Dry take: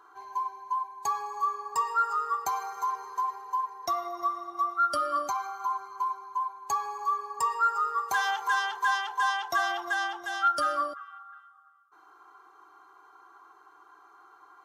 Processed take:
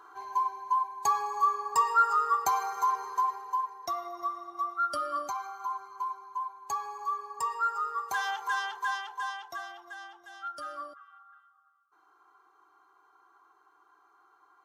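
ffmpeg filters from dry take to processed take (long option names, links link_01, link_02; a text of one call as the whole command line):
ffmpeg -i in.wav -af "volume=10dB,afade=type=out:start_time=3.06:duration=0.83:silence=0.446684,afade=type=out:start_time=8.67:duration=1.06:silence=0.281838,afade=type=in:start_time=10.41:duration=0.87:silence=0.446684" out.wav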